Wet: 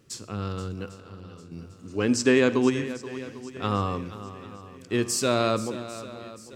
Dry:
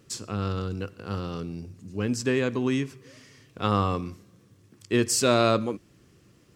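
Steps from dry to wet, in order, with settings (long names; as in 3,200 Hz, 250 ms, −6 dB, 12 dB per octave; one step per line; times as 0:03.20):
0:00.93–0:01.52: downward compressor 2 to 1, threshold −52 dBFS, peak gain reduction 14 dB
0:01.83–0:02.70: gain on a spectral selection 230–9,400 Hz +8 dB
feedback echo with a long and a short gap by turns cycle 798 ms, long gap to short 1.5 to 1, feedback 41%, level −14.5 dB
convolution reverb RT60 0.95 s, pre-delay 50 ms, DRR 17.5 dB
level −2.5 dB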